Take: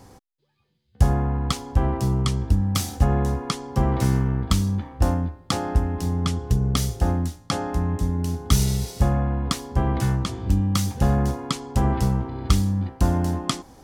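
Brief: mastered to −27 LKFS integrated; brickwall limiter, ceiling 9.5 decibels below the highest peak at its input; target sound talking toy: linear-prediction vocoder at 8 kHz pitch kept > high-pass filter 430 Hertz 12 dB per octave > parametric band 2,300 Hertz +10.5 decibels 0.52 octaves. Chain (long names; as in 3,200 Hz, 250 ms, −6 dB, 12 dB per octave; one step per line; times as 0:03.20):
brickwall limiter −12.5 dBFS
linear-prediction vocoder at 8 kHz pitch kept
high-pass filter 430 Hz 12 dB per octave
parametric band 2,300 Hz +10.5 dB 0.52 octaves
level +6.5 dB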